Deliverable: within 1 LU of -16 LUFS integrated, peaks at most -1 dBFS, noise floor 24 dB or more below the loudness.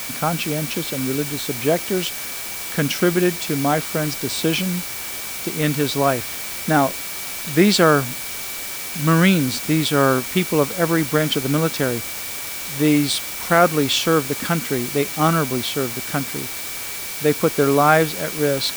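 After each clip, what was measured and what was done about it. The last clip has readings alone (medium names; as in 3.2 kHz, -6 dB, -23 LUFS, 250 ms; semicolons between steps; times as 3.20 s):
steady tone 2.3 kHz; tone level -37 dBFS; noise floor -30 dBFS; noise floor target -44 dBFS; loudness -20.0 LUFS; peak level -1.5 dBFS; loudness target -16.0 LUFS
-> band-stop 2.3 kHz, Q 30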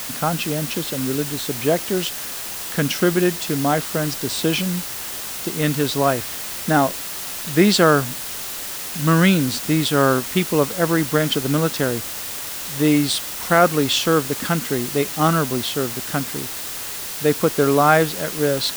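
steady tone not found; noise floor -30 dBFS; noise floor target -44 dBFS
-> noise print and reduce 14 dB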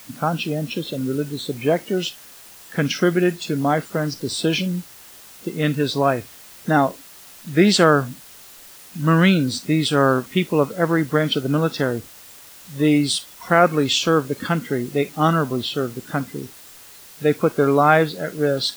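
noise floor -44 dBFS; noise floor target -45 dBFS
-> noise print and reduce 6 dB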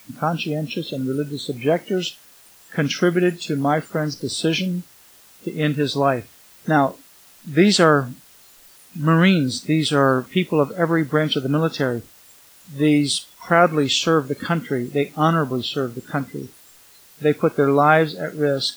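noise floor -50 dBFS; loudness -20.5 LUFS; peak level -2.0 dBFS; loudness target -16.0 LUFS
-> trim +4.5 dB; peak limiter -1 dBFS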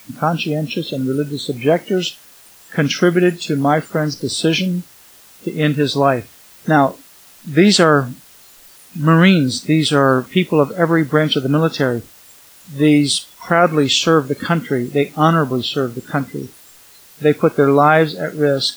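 loudness -16.0 LUFS; peak level -1.0 dBFS; noise floor -45 dBFS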